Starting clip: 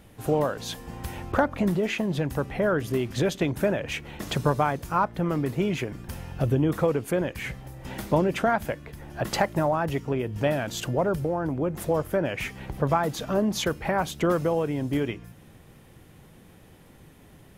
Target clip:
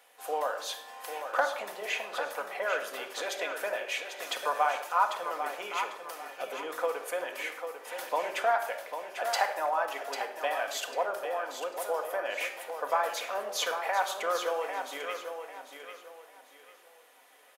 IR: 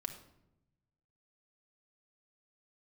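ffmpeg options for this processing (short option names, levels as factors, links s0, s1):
-filter_complex "[0:a]highpass=f=600:w=0.5412,highpass=f=600:w=1.3066,aecho=1:1:796|1592|2388|3184:0.398|0.119|0.0358|0.0107[s0];[1:a]atrim=start_sample=2205[s1];[s0][s1]afir=irnorm=-1:irlink=0"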